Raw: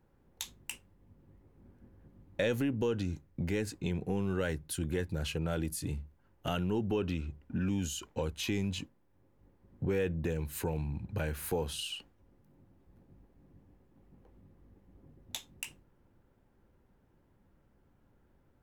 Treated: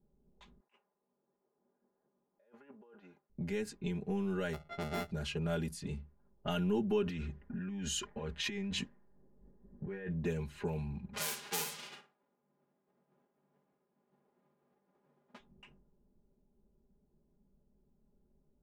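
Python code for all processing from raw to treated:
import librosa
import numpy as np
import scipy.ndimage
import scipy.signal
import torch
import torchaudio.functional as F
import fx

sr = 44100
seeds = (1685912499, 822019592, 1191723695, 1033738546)

y = fx.chain(x, sr, fx.highpass(hz=950.0, slope=12),
    fx.over_compress(threshold_db=-51.0, ratio=-1.0), at=(0.6, 3.3))
y = fx.chain(y, sr, fx.sample_sort(block=64),
    fx.peak_eq(hz=7700.0, db=-7.5, octaves=1.6), at=(4.53, 5.11))
y = fx.chain(y, sr, fx.peak_eq(hz=1800.0, db=10.0, octaves=0.36),
    fx.over_compress(threshold_db=-37.0, ratio=-1.0), at=(7.06, 10.1))
y = fx.envelope_flatten(y, sr, power=0.1, at=(11.13, 15.38), fade=0.02)
y = fx.highpass(y, sr, hz=120.0, slope=24, at=(11.13, 15.38), fade=0.02)
y = fx.room_flutter(y, sr, wall_m=9.5, rt60_s=0.38, at=(11.13, 15.38), fade=0.02)
y = fx.env_lowpass(y, sr, base_hz=510.0, full_db=-29.5)
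y = y + 0.92 * np.pad(y, (int(4.9 * sr / 1000.0), 0))[:len(y)]
y = fx.rider(y, sr, range_db=10, speed_s=2.0)
y = y * 10.0 ** (-5.0 / 20.0)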